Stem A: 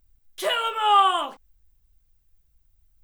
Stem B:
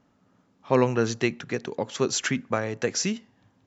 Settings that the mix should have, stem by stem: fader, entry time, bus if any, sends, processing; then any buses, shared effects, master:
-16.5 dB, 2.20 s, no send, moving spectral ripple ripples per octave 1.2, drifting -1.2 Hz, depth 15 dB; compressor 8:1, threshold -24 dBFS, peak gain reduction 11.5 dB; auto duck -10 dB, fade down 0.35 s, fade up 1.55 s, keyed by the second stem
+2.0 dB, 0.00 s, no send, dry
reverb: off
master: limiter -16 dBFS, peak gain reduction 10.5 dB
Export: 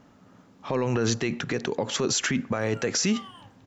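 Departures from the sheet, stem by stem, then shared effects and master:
stem A: missing compressor 8:1, threshold -24 dBFS, peak gain reduction 11.5 dB; stem B +2.0 dB -> +9.5 dB

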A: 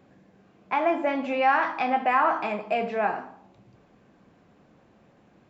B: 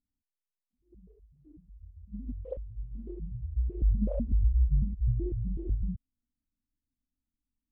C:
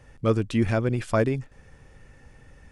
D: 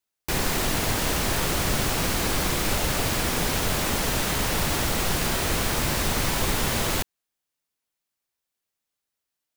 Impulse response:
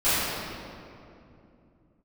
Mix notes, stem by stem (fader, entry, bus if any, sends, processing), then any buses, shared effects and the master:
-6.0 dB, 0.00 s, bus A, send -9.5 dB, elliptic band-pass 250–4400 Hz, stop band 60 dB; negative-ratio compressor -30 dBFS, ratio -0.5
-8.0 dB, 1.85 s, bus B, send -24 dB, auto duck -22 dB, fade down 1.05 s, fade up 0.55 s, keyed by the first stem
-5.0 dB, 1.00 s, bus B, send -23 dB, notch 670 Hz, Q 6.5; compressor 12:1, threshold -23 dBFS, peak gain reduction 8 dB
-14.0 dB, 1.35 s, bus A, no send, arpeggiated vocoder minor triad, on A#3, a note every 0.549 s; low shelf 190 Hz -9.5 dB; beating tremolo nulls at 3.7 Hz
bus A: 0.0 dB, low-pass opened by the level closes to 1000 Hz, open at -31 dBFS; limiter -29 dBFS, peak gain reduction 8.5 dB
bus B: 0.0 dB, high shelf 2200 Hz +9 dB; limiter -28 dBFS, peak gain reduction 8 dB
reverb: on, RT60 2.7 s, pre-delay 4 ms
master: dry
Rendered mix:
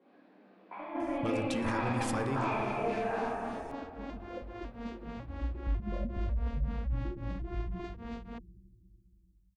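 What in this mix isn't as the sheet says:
stem A -6.0 dB -> -13.5 dB; stem D: missing low shelf 190 Hz -9.5 dB

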